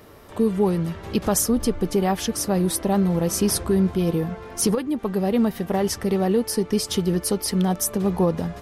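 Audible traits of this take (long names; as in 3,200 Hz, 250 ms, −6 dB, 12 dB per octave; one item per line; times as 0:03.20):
background noise floor −41 dBFS
spectral slope −5.0 dB per octave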